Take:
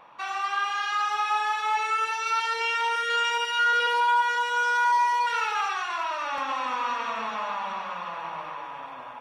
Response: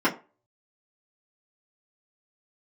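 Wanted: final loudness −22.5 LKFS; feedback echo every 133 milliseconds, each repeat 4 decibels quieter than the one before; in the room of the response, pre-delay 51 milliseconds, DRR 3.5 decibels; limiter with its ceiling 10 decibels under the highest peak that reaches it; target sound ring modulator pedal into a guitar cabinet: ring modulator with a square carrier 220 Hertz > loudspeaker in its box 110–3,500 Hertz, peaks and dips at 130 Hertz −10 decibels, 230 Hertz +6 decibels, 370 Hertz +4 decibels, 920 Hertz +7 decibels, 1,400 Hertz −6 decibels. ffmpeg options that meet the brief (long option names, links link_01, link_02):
-filter_complex "[0:a]alimiter=level_in=0.5dB:limit=-24dB:level=0:latency=1,volume=-0.5dB,aecho=1:1:133|266|399|532|665|798|931|1064|1197:0.631|0.398|0.25|0.158|0.0994|0.0626|0.0394|0.0249|0.0157,asplit=2[link_01][link_02];[1:a]atrim=start_sample=2205,adelay=51[link_03];[link_02][link_03]afir=irnorm=-1:irlink=0,volume=-19dB[link_04];[link_01][link_04]amix=inputs=2:normalize=0,aeval=exprs='val(0)*sgn(sin(2*PI*220*n/s))':channel_layout=same,highpass=110,equalizer=frequency=130:width_type=q:width=4:gain=-10,equalizer=frequency=230:width_type=q:width=4:gain=6,equalizer=frequency=370:width_type=q:width=4:gain=4,equalizer=frequency=920:width_type=q:width=4:gain=7,equalizer=frequency=1400:width_type=q:width=4:gain=-6,lowpass=frequency=3500:width=0.5412,lowpass=frequency=3500:width=1.3066,volume=5.5dB"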